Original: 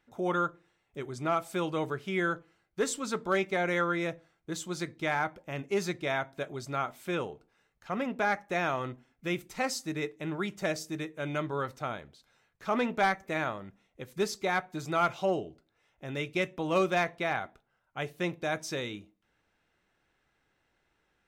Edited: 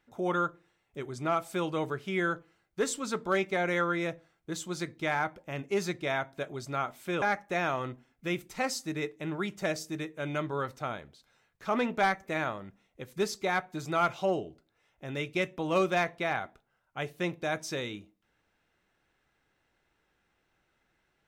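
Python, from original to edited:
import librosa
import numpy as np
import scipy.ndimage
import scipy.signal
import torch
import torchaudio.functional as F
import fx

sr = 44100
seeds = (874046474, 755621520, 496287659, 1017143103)

y = fx.edit(x, sr, fx.cut(start_s=7.22, length_s=1.0), tone=tone)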